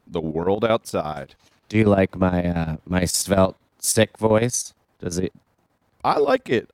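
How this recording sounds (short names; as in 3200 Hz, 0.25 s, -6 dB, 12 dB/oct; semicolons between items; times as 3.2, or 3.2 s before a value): chopped level 8.6 Hz, depth 65%, duty 70%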